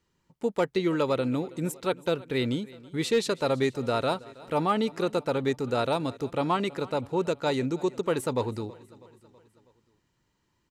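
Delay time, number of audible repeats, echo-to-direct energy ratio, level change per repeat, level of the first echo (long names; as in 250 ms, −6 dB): 324 ms, 3, −19.5 dB, −5.0 dB, −21.0 dB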